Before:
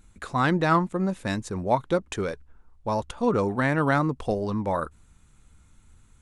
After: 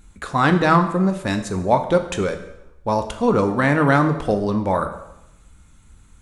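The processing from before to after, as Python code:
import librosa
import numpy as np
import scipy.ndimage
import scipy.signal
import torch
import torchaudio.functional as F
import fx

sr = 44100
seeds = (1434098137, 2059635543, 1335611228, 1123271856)

y = fx.rev_plate(x, sr, seeds[0], rt60_s=0.87, hf_ratio=0.9, predelay_ms=0, drr_db=6.5)
y = y * 10.0 ** (5.5 / 20.0)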